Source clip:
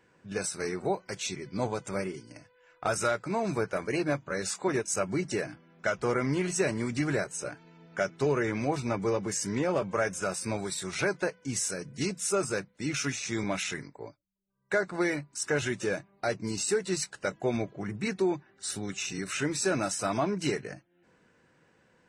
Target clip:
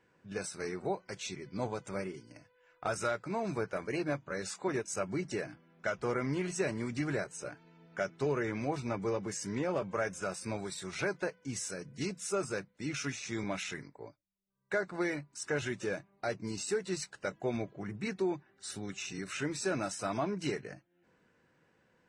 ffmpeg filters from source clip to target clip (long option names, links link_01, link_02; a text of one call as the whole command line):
ffmpeg -i in.wav -af "highshelf=frequency=10000:gain=-10.5,volume=-5dB" out.wav